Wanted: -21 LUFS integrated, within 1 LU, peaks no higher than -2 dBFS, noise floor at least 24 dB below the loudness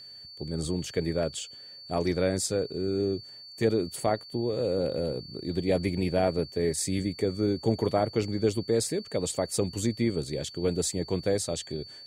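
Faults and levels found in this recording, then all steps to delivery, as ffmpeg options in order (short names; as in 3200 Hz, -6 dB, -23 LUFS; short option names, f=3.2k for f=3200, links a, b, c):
steady tone 4500 Hz; tone level -44 dBFS; loudness -29.0 LUFS; peak -11.5 dBFS; loudness target -21.0 LUFS
-> -af "bandreject=f=4.5k:w=30"
-af "volume=8dB"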